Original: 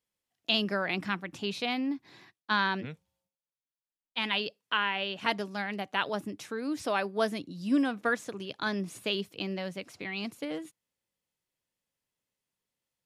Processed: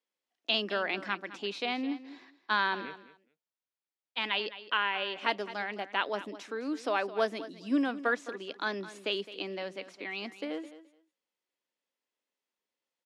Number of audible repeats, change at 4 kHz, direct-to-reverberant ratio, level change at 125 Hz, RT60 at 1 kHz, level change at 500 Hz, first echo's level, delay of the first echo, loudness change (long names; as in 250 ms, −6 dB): 2, −1.5 dB, no reverb audible, below −10 dB, no reverb audible, 0.0 dB, −15.0 dB, 212 ms, −1.0 dB